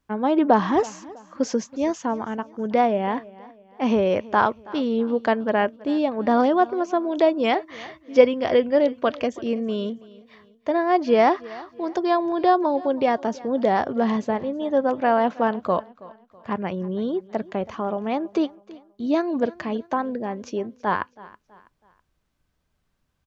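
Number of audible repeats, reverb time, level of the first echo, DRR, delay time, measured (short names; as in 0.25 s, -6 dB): 2, none, -20.5 dB, none, 0.325 s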